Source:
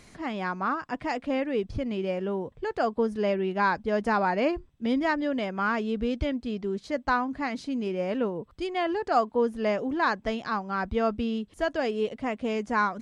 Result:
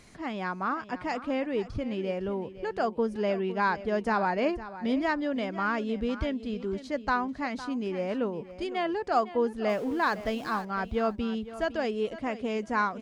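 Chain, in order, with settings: 9.69–10.65 zero-crossing step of -40.5 dBFS; on a send: feedback echo 0.508 s, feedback 18%, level -14.5 dB; on the sum: gain -2 dB

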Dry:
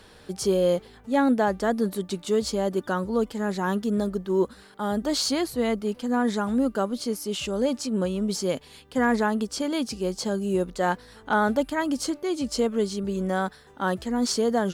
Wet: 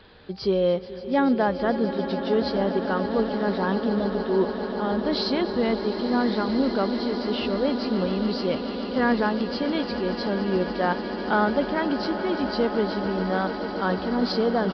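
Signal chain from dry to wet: nonlinear frequency compression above 3700 Hz 1.5:1; swelling echo 0.144 s, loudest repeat 8, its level -14.5 dB; downsampling 11025 Hz

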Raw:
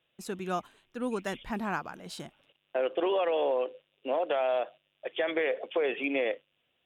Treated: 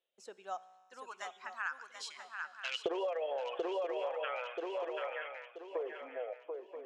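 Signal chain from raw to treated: Doppler pass-by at 2.85, 15 m/s, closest 5.3 m; reverb removal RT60 1.3 s; resonator 62 Hz, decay 1.7 s, harmonics all, mix 50%; overloaded stage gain 29.5 dB; low-pass sweep 6600 Hz -> 510 Hz, 3.11–6.77; dynamic EQ 1400 Hz, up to +5 dB, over -55 dBFS, Q 0.79; LFO high-pass saw up 0.35 Hz 440–3500 Hz; low shelf 200 Hz +6 dB; swung echo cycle 0.981 s, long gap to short 3:1, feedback 32%, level -7.5 dB; compressor 16:1, threshold -40 dBFS, peak gain reduction 17 dB; gain +7.5 dB

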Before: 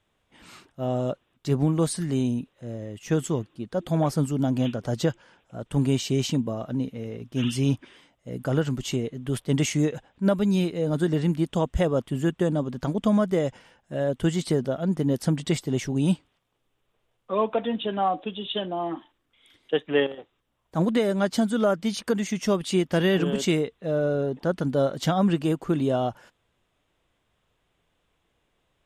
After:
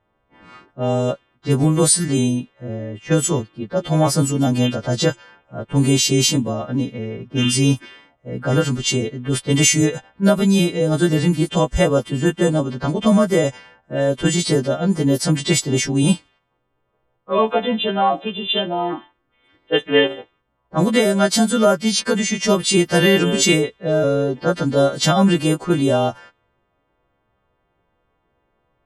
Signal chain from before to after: frequency quantiser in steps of 2 st; low-pass opened by the level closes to 1100 Hz, open at -20 dBFS; gain +7.5 dB

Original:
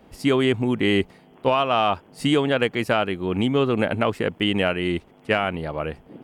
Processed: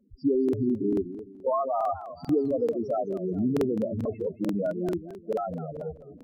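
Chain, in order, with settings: sample leveller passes 1; loudest bins only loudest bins 4; crackling interface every 0.44 s, samples 2048, repeat, from 0.44; warbling echo 0.213 s, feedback 34%, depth 206 cents, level -13 dB; gain -6 dB

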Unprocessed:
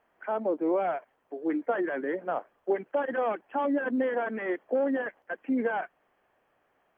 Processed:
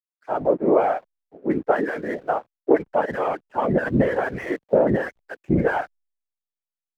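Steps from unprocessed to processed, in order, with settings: whisperiser; backlash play -50.5 dBFS; three-band expander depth 100%; gain +6.5 dB

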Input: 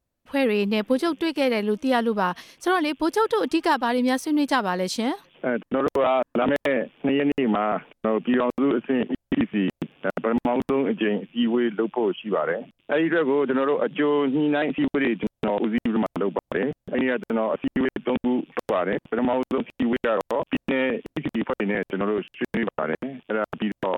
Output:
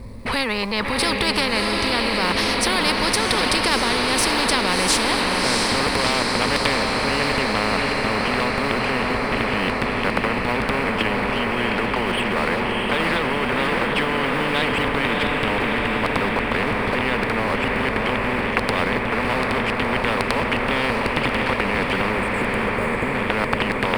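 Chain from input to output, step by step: G.711 law mismatch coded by mu; RIAA curve playback; spectral delete 22.12–23.15, 630–6500 Hz; ripple EQ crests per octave 0.93, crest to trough 12 dB; in parallel at -3 dB: negative-ratio compressor -18 dBFS; on the sum: limiter -9.5 dBFS, peak gain reduction 8.5 dB; diffused feedback echo 0.666 s, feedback 66%, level -6 dB; spectral compressor 4:1; gain +2 dB

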